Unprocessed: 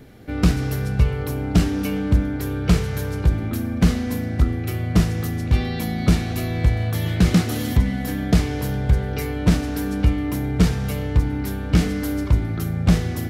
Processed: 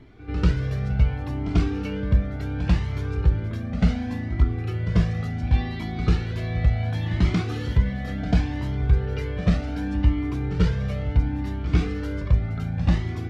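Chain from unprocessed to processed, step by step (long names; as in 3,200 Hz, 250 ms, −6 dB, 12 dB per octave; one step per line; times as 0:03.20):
low-pass filter 3,900 Hz 12 dB per octave
backwards echo 92 ms −12.5 dB
flanger whose copies keep moving one way rising 0.69 Hz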